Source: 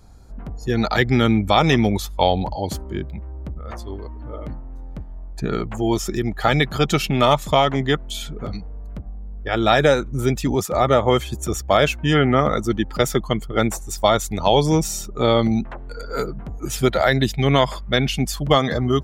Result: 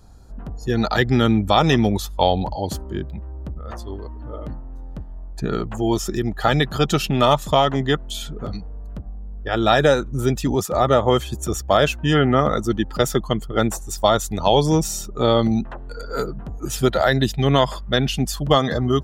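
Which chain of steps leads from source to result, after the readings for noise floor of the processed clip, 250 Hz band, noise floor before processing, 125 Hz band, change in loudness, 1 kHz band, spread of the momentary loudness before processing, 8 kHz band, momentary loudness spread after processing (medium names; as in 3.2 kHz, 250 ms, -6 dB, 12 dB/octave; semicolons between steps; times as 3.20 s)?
-34 dBFS, 0.0 dB, -34 dBFS, 0.0 dB, 0.0 dB, 0.0 dB, 17 LU, 0.0 dB, 17 LU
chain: band-stop 2.2 kHz, Q 5.6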